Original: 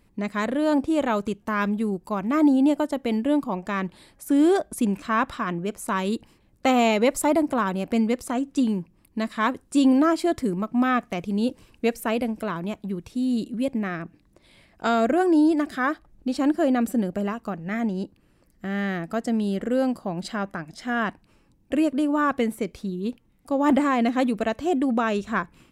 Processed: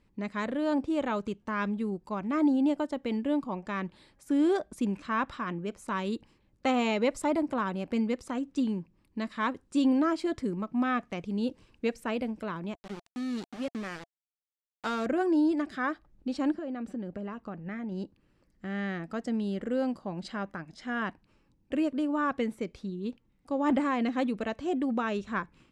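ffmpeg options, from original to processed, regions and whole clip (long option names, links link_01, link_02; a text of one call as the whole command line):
ffmpeg -i in.wav -filter_complex "[0:a]asettb=1/sr,asplit=3[link_01][link_02][link_03];[link_01]atrim=end=12.754[link_04];[link_02]atrim=start=12.75:end=15.06,asetpts=PTS-STARTPTS,afade=type=in:duration=0.004:curve=qsin,afade=type=out:start_time=2.306:duration=0.004:curve=qsin,lowshelf=frequency=440:gain=-4,aeval=exprs='val(0)*gte(abs(val(0)),0.0282)':channel_layout=same[link_05];[link_03]atrim=start=15.056[link_06];[link_04][link_05]acrossfade=duration=0.004:curve1=hsin:curve2=qsin[link_07];[link_07][link_06]acrossfade=duration=0.004:curve1=qsin:curve2=hsin,asettb=1/sr,asplit=3[link_08][link_09][link_10];[link_08]atrim=end=16.544[link_11];[link_09]atrim=start=16.54:end=17.92,asetpts=PTS-STARTPTS,afade=type=in:duration=0.004:curve=qsin,afade=type=out:start_time=1.376:duration=0.004:curve=qsin,aemphasis=mode=reproduction:type=50fm,acompressor=threshold=-26dB:ratio=5:attack=3.2:release=140:knee=1:detection=peak[link_12];[link_10]atrim=start=17.916[link_13];[link_11][link_12]acrossfade=duration=0.004:curve1=hsin:curve2=qsin[link_14];[link_14][link_13]acrossfade=duration=0.004:curve1=qsin:curve2=hsin,lowpass=6400,bandreject=frequency=690:width=12,volume=-6.5dB" out.wav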